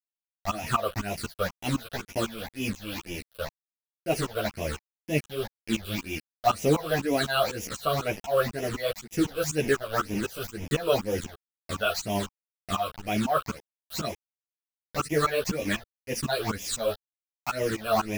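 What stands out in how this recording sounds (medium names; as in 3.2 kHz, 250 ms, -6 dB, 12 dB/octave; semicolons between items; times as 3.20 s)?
a quantiser's noise floor 6-bit, dither none; phasing stages 8, 2 Hz, lowest notch 250–1300 Hz; tremolo saw up 4 Hz, depth 95%; a shimmering, thickened sound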